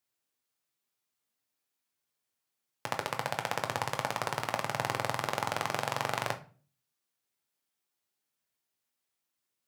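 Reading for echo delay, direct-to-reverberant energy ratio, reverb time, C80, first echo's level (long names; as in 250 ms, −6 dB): no echo audible, 5.0 dB, 0.40 s, 20.0 dB, no echo audible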